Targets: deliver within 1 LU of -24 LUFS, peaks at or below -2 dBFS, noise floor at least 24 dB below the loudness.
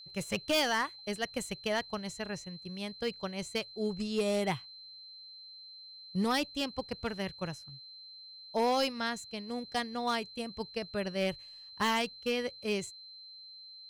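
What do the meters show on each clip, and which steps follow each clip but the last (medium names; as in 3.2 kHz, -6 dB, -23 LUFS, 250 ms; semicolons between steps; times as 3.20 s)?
clipped samples 0.8%; clipping level -23.5 dBFS; steady tone 4.1 kHz; tone level -48 dBFS; loudness -34.0 LUFS; peak level -23.5 dBFS; loudness target -24.0 LUFS
-> clip repair -23.5 dBFS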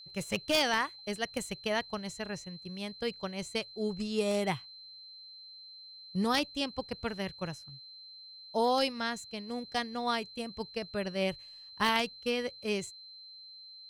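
clipped samples 0.0%; steady tone 4.1 kHz; tone level -48 dBFS
-> band-stop 4.1 kHz, Q 30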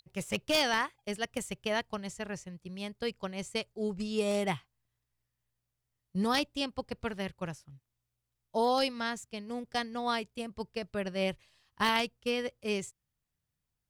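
steady tone not found; loudness -33.5 LUFS; peak level -14.5 dBFS; loudness target -24.0 LUFS
-> trim +9.5 dB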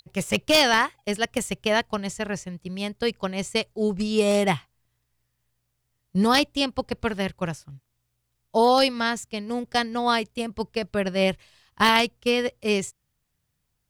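loudness -24.0 LUFS; peak level -5.0 dBFS; noise floor -76 dBFS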